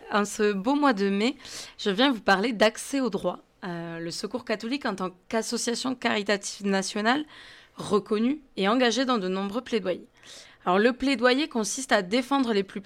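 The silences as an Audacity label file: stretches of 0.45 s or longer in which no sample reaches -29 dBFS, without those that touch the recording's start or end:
7.220000	7.800000	silence
9.950000	10.670000	silence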